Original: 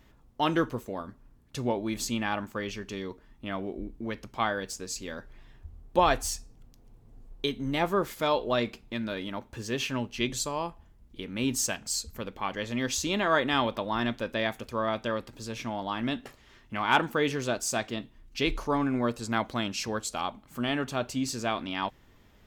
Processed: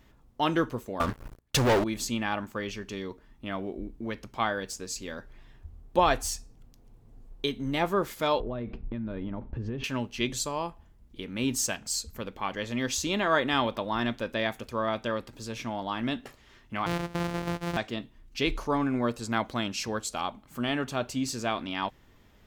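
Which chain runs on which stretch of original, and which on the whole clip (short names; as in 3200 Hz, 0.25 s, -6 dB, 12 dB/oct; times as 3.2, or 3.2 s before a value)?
1–1.84 sample leveller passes 5 + bell 220 Hz -6.5 dB 1.6 oct
8.4–9.84 LPF 3200 Hz + tilt -4 dB/oct + compressor 16:1, threshold -29 dBFS
16.86–17.77 sample sorter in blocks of 256 samples + LPF 3100 Hz 6 dB/oct + compressor, threshold -25 dBFS
whole clip: dry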